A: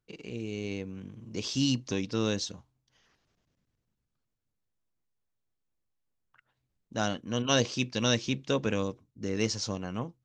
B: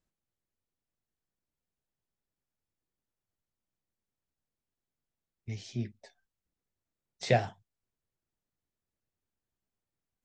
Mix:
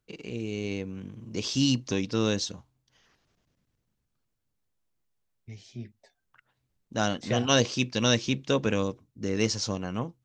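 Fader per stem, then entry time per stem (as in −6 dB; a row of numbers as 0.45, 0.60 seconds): +3.0, −5.0 decibels; 0.00, 0.00 seconds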